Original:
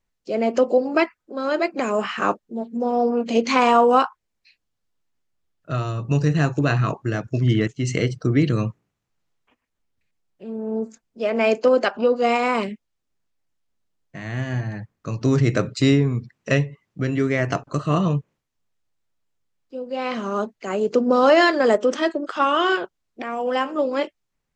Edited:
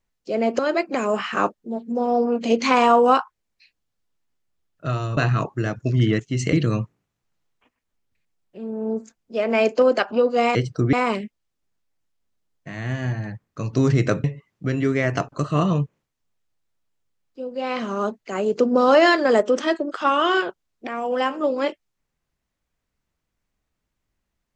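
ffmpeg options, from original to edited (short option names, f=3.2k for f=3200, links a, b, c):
-filter_complex "[0:a]asplit=7[a][b][c][d][e][f][g];[a]atrim=end=0.592[h];[b]atrim=start=1.438:end=6.022[i];[c]atrim=start=6.648:end=8.012[j];[d]atrim=start=8.388:end=12.412[k];[e]atrim=start=8.008:end=8.392[l];[f]atrim=start=12.408:end=15.722[m];[g]atrim=start=16.588[n];[h][i]acrossfade=d=0.004:c1=hsin:c2=hsin[o];[o][j]acrossfade=d=0.004:c1=hsin:c2=hsin[p];[p][k]acrossfade=d=0.004:c1=hsin:c2=hsin[q];[q][l]acrossfade=d=0.004:c1=hsin:c2=hsin[r];[r][m]acrossfade=d=0.004:c1=hsin:c2=hsin[s];[s][n]acrossfade=d=0.004:c1=hsin:c2=hsin"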